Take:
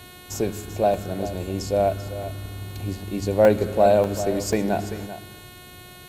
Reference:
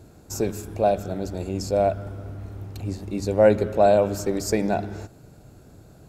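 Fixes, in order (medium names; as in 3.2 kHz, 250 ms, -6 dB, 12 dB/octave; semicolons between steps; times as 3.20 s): de-hum 361.8 Hz, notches 12; interpolate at 0.94/2.23/2.71/3.45/4.04/4.53 s, 1.2 ms; noise print and reduce 6 dB; inverse comb 389 ms -13 dB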